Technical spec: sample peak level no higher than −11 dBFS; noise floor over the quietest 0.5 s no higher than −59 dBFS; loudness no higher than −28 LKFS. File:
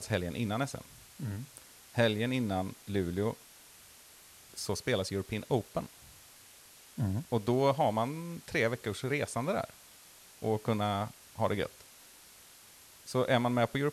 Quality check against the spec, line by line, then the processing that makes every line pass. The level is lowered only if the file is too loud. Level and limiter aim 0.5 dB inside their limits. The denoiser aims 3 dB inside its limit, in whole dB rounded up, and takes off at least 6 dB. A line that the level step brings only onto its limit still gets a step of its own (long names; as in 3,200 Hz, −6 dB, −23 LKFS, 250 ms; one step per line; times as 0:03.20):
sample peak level −14.5 dBFS: in spec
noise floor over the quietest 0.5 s −56 dBFS: out of spec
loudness −33.0 LKFS: in spec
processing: broadband denoise 6 dB, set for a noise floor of −56 dBFS